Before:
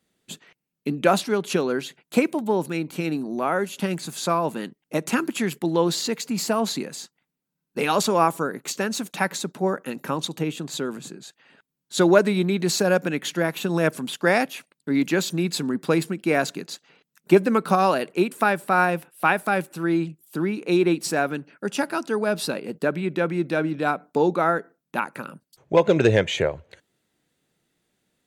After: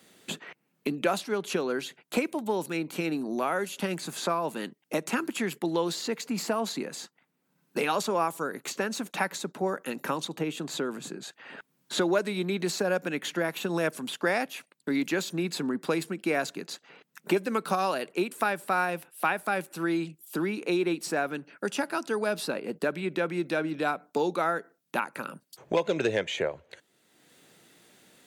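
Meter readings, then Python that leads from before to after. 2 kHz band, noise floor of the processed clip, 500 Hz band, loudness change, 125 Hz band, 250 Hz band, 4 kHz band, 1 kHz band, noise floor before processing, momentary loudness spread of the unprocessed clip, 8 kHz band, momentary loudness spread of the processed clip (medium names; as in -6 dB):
-5.0 dB, -74 dBFS, -6.5 dB, -6.5 dB, -10.0 dB, -7.0 dB, -5.0 dB, -6.0 dB, -83 dBFS, 11 LU, -6.0 dB, 9 LU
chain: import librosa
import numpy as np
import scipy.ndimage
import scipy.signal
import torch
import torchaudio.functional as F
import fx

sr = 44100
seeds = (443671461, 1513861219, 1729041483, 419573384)

y = fx.highpass(x, sr, hz=270.0, slope=6)
y = fx.band_squash(y, sr, depth_pct=70)
y = y * 10.0 ** (-5.0 / 20.0)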